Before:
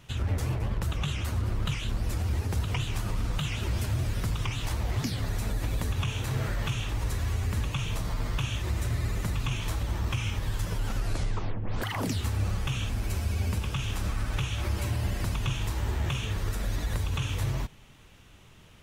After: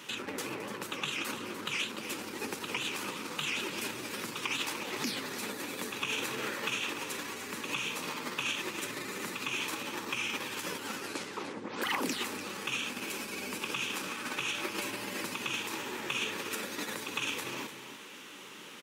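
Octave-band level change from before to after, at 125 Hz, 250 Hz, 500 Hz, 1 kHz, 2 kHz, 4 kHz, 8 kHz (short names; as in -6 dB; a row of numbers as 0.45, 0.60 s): -24.0, -3.0, 0.0, +0.5, +4.0, +2.5, +2.0 dB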